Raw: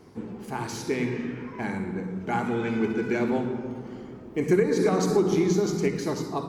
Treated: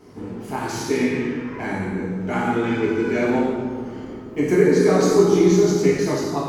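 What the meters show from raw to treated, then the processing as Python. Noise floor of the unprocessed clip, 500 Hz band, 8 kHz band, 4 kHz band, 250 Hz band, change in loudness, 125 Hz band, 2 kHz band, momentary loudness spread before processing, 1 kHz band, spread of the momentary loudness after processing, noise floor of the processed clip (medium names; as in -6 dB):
-43 dBFS, +7.5 dB, +6.5 dB, +6.5 dB, +6.0 dB, +6.5 dB, +5.5 dB, +6.5 dB, 13 LU, +5.0 dB, 15 LU, -35 dBFS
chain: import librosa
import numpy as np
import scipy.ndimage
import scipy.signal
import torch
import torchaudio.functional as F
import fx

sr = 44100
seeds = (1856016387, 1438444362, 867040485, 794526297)

y = fx.rev_gated(x, sr, seeds[0], gate_ms=300, shape='falling', drr_db=-5.5)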